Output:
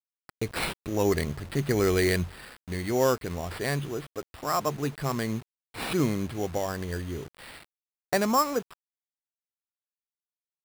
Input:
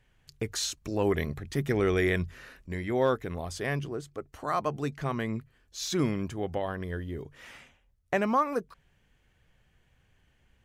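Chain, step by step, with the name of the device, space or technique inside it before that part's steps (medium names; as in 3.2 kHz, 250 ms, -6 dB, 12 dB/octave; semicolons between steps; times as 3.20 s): early 8-bit sampler (sample-rate reducer 6.4 kHz, jitter 0%; bit crusher 8-bit); trim +2 dB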